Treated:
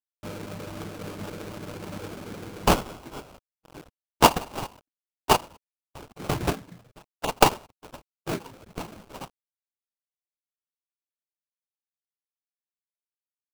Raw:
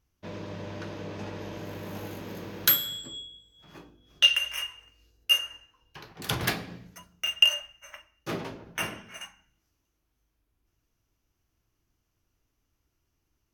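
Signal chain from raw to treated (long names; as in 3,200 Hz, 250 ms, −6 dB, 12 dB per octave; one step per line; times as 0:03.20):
spectral magnitudes quantised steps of 15 dB
bit reduction 8 bits
0:08.37–0:08.99: downward compressor 6 to 1, threshold −36 dBFS, peak gain reduction 9.5 dB
reverb reduction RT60 0.89 s
sample-rate reduction 1,900 Hz, jitter 20%
0:06.81–0:07.29: flanger swept by the level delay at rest 9.6 ms, full sweep at −27.5 dBFS
level +3.5 dB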